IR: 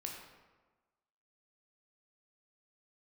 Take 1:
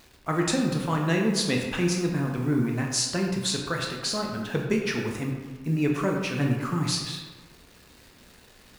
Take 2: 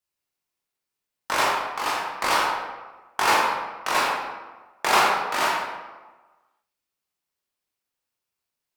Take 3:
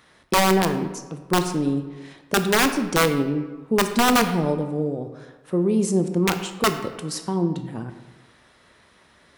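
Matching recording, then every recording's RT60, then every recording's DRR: 1; 1.3, 1.3, 1.3 seconds; 0.0, −5.0, 7.0 decibels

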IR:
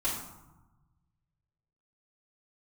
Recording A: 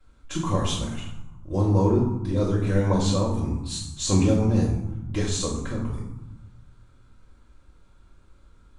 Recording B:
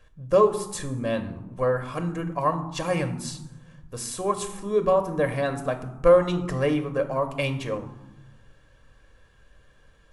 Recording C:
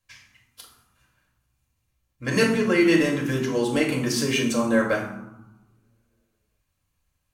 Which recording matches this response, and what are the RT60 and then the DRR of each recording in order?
A; 1.0, 1.1, 1.0 seconds; −10.5, 6.0, −1.5 decibels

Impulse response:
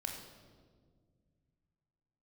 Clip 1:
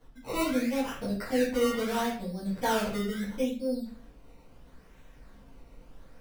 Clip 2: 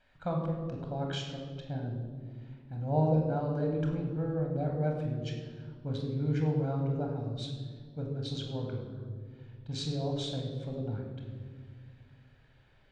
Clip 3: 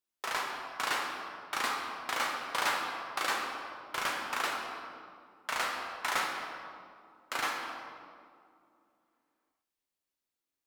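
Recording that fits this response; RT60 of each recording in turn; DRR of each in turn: 2; 0.50, 1.8, 2.4 seconds; −10.0, 1.0, 0.0 decibels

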